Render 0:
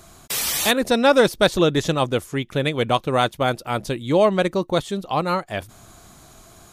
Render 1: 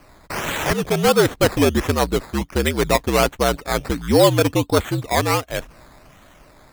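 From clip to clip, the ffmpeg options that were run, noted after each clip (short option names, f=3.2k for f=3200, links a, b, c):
-af "dynaudnorm=f=230:g=13:m=11.5dB,afreqshift=-66,acrusher=samples=12:mix=1:aa=0.000001:lfo=1:lforange=7.2:lforate=1.4,volume=-1.5dB"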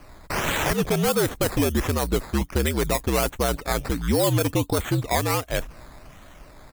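-filter_complex "[0:a]lowshelf=f=70:g=7.5,acrossover=split=7400[a][b];[a]alimiter=limit=-13dB:level=0:latency=1:release=98[c];[b]asplit=2[d][e];[e]adelay=28,volume=-8.5dB[f];[d][f]amix=inputs=2:normalize=0[g];[c][g]amix=inputs=2:normalize=0"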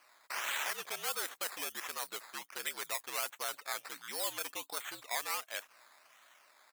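-af "highpass=1.1k,volume=-9dB"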